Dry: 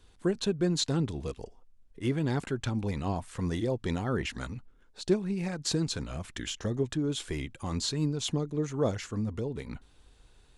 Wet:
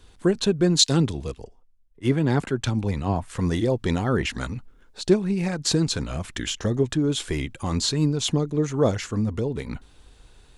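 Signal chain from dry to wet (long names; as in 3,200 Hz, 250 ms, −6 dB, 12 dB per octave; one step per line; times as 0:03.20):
0:00.79–0:03.30: multiband upward and downward expander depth 70%
level +7.5 dB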